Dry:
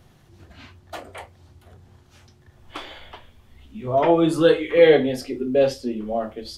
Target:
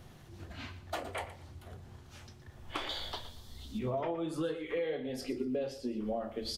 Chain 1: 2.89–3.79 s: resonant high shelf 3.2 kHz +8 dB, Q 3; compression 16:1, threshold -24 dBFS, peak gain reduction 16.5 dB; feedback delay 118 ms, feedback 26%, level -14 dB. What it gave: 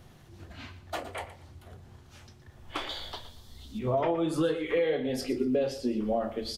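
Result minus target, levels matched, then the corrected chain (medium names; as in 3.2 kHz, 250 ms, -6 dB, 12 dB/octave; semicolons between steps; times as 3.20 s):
compression: peak gain reduction -7.5 dB
2.89–3.79 s: resonant high shelf 3.2 kHz +8 dB, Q 3; compression 16:1, threshold -32 dBFS, peak gain reduction 24 dB; feedback delay 118 ms, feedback 26%, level -14 dB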